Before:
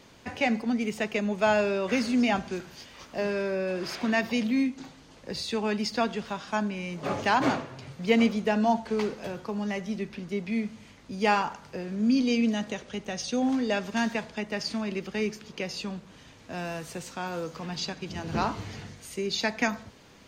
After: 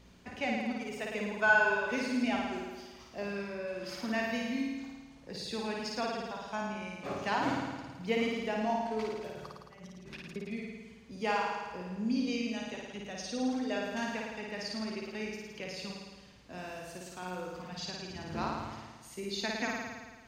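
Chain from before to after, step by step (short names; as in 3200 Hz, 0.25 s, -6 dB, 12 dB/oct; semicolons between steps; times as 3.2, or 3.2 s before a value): 1.21–1.78 small resonant body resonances 1000/1500 Hz, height 14 dB -> 17 dB, ringing for 45 ms; 9.3–10.36 negative-ratio compressor -43 dBFS, ratio -1; hum 60 Hz, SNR 22 dB; reverb removal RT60 1.3 s; on a send: flutter echo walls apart 9.4 m, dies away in 1.4 s; on the sum: gain -9 dB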